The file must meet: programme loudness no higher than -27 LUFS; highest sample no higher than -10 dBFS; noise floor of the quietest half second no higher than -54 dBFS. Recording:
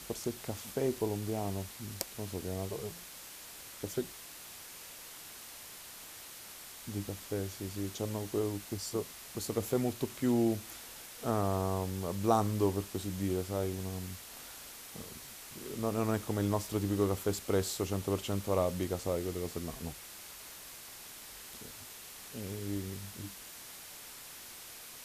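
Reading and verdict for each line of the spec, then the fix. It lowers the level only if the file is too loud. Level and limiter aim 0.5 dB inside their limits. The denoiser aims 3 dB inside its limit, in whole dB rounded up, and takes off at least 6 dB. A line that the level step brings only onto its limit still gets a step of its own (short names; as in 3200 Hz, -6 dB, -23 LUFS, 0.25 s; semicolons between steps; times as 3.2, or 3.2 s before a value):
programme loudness -37.0 LUFS: OK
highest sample -13.0 dBFS: OK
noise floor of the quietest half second -49 dBFS: fail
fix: denoiser 8 dB, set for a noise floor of -49 dBFS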